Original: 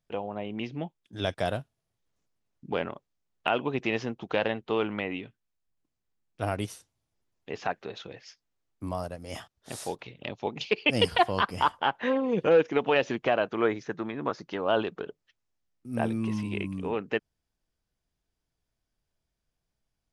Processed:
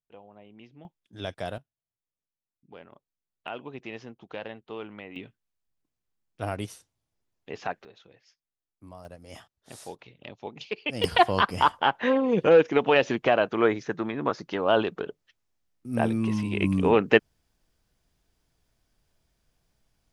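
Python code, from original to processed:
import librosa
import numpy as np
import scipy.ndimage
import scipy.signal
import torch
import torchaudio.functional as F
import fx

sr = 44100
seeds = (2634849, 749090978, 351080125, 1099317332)

y = fx.gain(x, sr, db=fx.steps((0.0, -16.0), (0.85, -5.0), (1.58, -17.5), (2.92, -10.5), (5.16, -1.5), (7.85, -13.0), (9.05, -6.5), (11.04, 3.5), (16.62, 10.5)))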